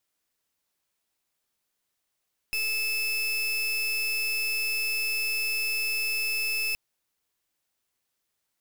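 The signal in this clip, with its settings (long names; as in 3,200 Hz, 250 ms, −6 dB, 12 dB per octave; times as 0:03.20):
pulse wave 2,620 Hz, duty 33% −28 dBFS 4.22 s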